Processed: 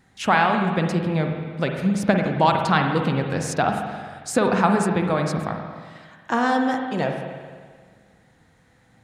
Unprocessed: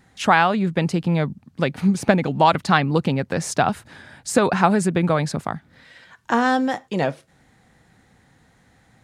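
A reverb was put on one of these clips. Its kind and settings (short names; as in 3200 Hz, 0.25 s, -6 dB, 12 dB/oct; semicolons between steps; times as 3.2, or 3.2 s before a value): spring tank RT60 1.7 s, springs 44/54 ms, chirp 50 ms, DRR 3 dB; gain -3 dB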